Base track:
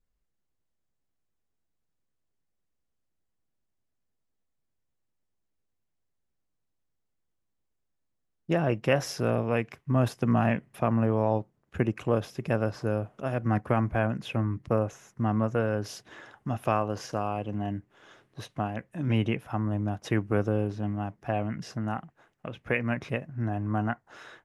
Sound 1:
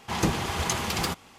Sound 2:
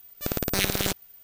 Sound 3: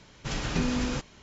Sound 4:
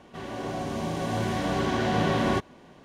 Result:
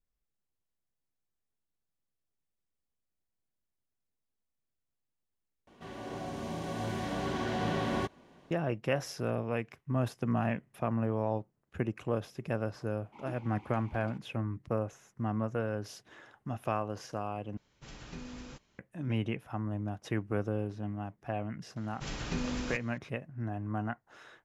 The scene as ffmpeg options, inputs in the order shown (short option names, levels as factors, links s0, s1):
-filter_complex "[3:a]asplit=2[s0][s1];[0:a]volume=0.473[s2];[1:a]asplit=3[s3][s4][s5];[s3]bandpass=f=300:t=q:w=8,volume=1[s6];[s4]bandpass=f=870:t=q:w=8,volume=0.501[s7];[s5]bandpass=f=2240:t=q:w=8,volume=0.355[s8];[s6][s7][s8]amix=inputs=3:normalize=0[s9];[s2]asplit=3[s10][s11][s12];[s10]atrim=end=5.674[s13];[4:a]atrim=end=2.84,asetpts=PTS-STARTPTS,volume=0.422[s14];[s11]atrim=start=8.506:end=17.574[s15];[s0]atrim=end=1.22,asetpts=PTS-STARTPTS,volume=0.141[s16];[s12]atrim=start=18.786[s17];[s9]atrim=end=1.38,asetpts=PTS-STARTPTS,volume=0.282,afade=t=in:d=0.004:c=hsin,afade=t=out:st=1.376:d=0.004:c=hsin,adelay=13040[s18];[s1]atrim=end=1.22,asetpts=PTS-STARTPTS,volume=0.447,afade=t=in:d=0.004:c=hsin,afade=t=out:st=1.216:d=0.004:c=hsin,adelay=21760[s19];[s13][s14]acrossfade=d=0.004:c1=hsin:c2=hsin[s20];[s20][s15]acrossfade=d=0.004:c1=hsin:c2=hsin[s21];[s21][s16]acrossfade=d=0.004:c1=hsin:c2=hsin[s22];[s22][s17]acrossfade=d=0.004:c1=hsin:c2=hsin[s23];[s23][s18][s19]amix=inputs=3:normalize=0"